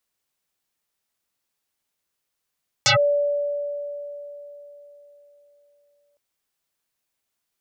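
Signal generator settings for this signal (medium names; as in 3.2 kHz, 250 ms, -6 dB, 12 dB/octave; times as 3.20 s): FM tone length 3.31 s, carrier 578 Hz, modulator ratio 1.21, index 10, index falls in 0.11 s linear, decay 3.87 s, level -13 dB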